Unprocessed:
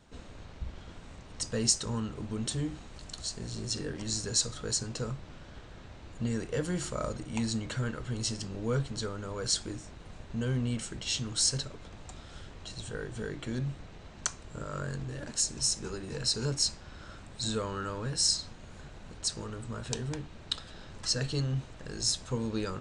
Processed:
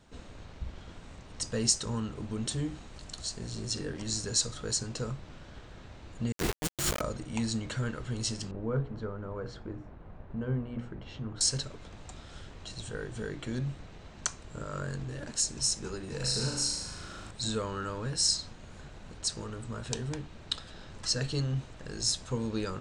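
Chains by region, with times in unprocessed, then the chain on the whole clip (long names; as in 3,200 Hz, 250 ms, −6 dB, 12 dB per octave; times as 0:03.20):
0:06.32–0:07.01: compressor whose output falls as the input rises −40 dBFS, ratio −0.5 + log-companded quantiser 2 bits
0:08.51–0:11.41: low-pass filter 1,300 Hz + mains-hum notches 60/120/180/240/300/360/420/480 Hz
0:16.16–0:17.31: high-shelf EQ 8,600 Hz +10 dB + downward compressor 3 to 1, threshold −30 dBFS + flutter between parallel walls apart 6.5 metres, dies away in 0.92 s
whole clip: no processing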